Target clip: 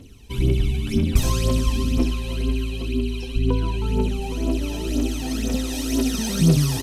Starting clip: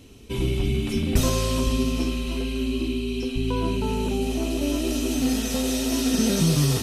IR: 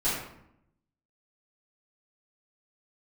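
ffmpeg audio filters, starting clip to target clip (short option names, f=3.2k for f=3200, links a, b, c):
-filter_complex "[0:a]asettb=1/sr,asplit=3[a][b][c];[a]atrim=end=3.384[d];[b]atrim=start=3.38:end=5.73,asetpts=PTS-STARTPTS,afade=t=in:d=0.004:c=qsin,afade=t=out:st=2.346:d=0.004:c=qsin,highshelf=f=6.7k:g=-5.5[e];[c]atrim=start=5.726[f];[d][e]acrossfade=d=0.004:c1=hsin:c2=qsin[g];[g][f]acrossfade=d=0.004:c1=qsin:c2=hsin,aphaser=in_gain=1:out_gain=1:delay=1.3:decay=0.68:speed=2:type=triangular,asplit=2[h][i];[i]adelay=816.3,volume=-10dB,highshelf=f=4k:g=-18.4[j];[h][j]amix=inputs=2:normalize=0,volume=-3.5dB"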